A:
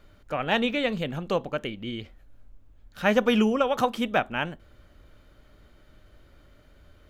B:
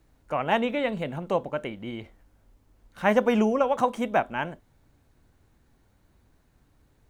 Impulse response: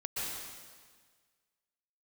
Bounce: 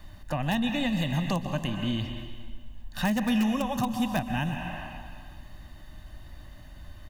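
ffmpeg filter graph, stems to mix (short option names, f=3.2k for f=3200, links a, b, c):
-filter_complex "[0:a]aecho=1:1:1.1:0.96,volume=2.5dB,asplit=2[a][b];[b]volume=-10dB[c];[1:a]aeval=exprs='(mod(4.47*val(0)+1,2)-1)/4.47':c=same,volume=-9dB[d];[2:a]atrim=start_sample=2205[e];[c][e]afir=irnorm=-1:irlink=0[f];[a][d][f]amix=inputs=3:normalize=0,highshelf=f=6.3k:g=4.5,acrossover=split=280|5000[g][h][i];[g]acompressor=threshold=-26dB:ratio=4[j];[h]acompressor=threshold=-33dB:ratio=4[k];[i]acompressor=threshold=-43dB:ratio=4[l];[j][k][l]amix=inputs=3:normalize=0"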